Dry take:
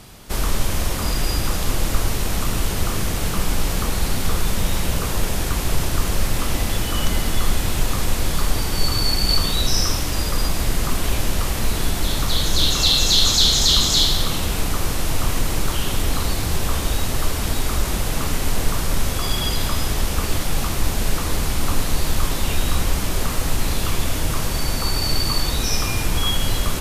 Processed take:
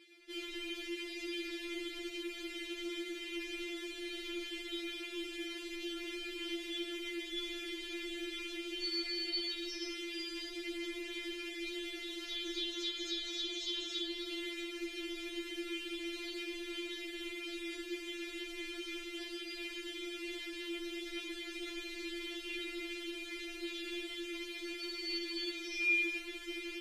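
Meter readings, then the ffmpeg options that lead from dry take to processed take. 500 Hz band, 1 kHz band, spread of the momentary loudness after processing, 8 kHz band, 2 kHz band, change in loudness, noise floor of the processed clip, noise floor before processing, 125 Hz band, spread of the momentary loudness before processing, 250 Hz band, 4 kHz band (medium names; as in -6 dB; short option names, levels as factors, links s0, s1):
-14.5 dB, -29.0 dB, 6 LU, -27.5 dB, -10.5 dB, -18.0 dB, -46 dBFS, -24 dBFS, under -40 dB, 7 LU, -13.0 dB, -17.5 dB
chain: -filter_complex "[0:a]asplit=3[s0][s1][s2];[s0]bandpass=f=270:t=q:w=8,volume=1[s3];[s1]bandpass=f=2290:t=q:w=8,volume=0.501[s4];[s2]bandpass=f=3010:t=q:w=8,volume=0.355[s5];[s3][s4][s5]amix=inputs=3:normalize=0,acrossover=split=2000|5800[s6][s7][s8];[s7]acompressor=threshold=0.00891:ratio=4[s9];[s8]acompressor=threshold=0.002:ratio=4[s10];[s6][s9][s10]amix=inputs=3:normalize=0,afftfilt=real='re*4*eq(mod(b,16),0)':imag='im*4*eq(mod(b,16),0)':win_size=2048:overlap=0.75,volume=1.41"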